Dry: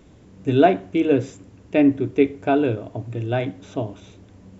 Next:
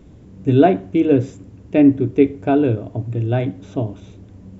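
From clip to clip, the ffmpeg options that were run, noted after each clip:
-af "lowshelf=f=440:g=10,volume=-2.5dB"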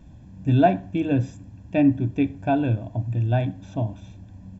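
-af "aecho=1:1:1.2:0.78,volume=-5.5dB"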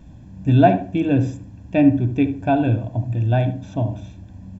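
-filter_complex "[0:a]asplit=2[a][b];[b]adelay=73,lowpass=f=1.2k:p=1,volume=-9dB,asplit=2[c][d];[d]adelay=73,lowpass=f=1.2k:p=1,volume=0.34,asplit=2[e][f];[f]adelay=73,lowpass=f=1.2k:p=1,volume=0.34,asplit=2[g][h];[h]adelay=73,lowpass=f=1.2k:p=1,volume=0.34[i];[a][c][e][g][i]amix=inputs=5:normalize=0,volume=3.5dB"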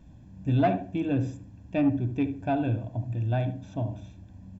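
-af "asoftclip=type=tanh:threshold=-7dB,volume=-8dB"

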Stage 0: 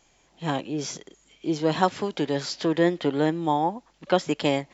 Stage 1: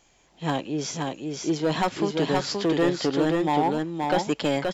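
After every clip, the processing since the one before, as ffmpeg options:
-filter_complex "[0:a]acrossover=split=3700[a][b];[a]asoftclip=type=hard:threshold=-18dB[c];[c][b]amix=inputs=2:normalize=0,aecho=1:1:525:0.668,volume=1dB"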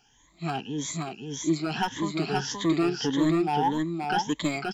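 -af "afftfilt=real='re*pow(10,18/40*sin(2*PI*(1.1*log(max(b,1)*sr/1024/100)/log(2)-(1.7)*(pts-256)/sr)))':imag='im*pow(10,18/40*sin(2*PI*(1.1*log(max(b,1)*sr/1024/100)/log(2)-(1.7)*(pts-256)/sr)))':win_size=1024:overlap=0.75,equalizer=f=540:t=o:w=0.49:g=-14.5,volume=-4dB"

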